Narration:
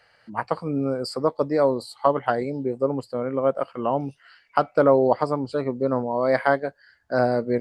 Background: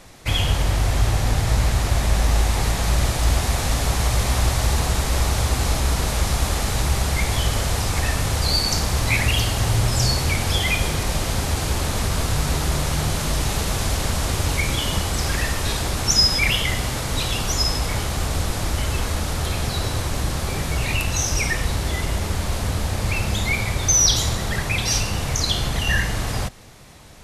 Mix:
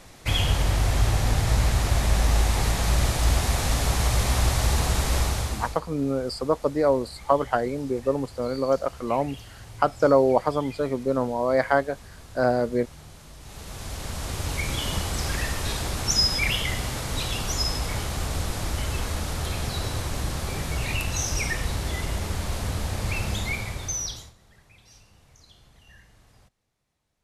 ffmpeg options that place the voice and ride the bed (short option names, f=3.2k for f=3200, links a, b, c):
-filter_complex "[0:a]adelay=5250,volume=-1dB[a];[1:a]volume=16dB,afade=t=out:st=5.15:d=0.65:silence=0.0891251,afade=t=in:st=13.4:d=1.47:silence=0.11885,afade=t=out:st=23.3:d=1.03:silence=0.0421697[b];[a][b]amix=inputs=2:normalize=0"